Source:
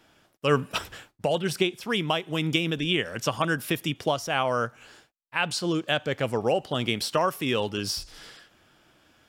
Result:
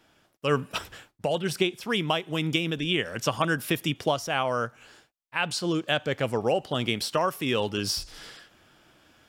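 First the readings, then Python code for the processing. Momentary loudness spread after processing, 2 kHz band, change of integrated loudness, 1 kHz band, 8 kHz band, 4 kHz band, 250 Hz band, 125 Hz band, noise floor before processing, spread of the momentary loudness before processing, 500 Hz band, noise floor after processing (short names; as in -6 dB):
8 LU, -0.5 dB, -0.5 dB, -1.0 dB, 0.0 dB, -0.5 dB, -0.5 dB, -0.5 dB, -67 dBFS, 7 LU, -0.5 dB, -68 dBFS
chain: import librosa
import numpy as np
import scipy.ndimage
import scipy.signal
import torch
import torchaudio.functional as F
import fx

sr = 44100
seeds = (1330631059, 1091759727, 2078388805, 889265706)

y = fx.rider(x, sr, range_db=10, speed_s=0.5)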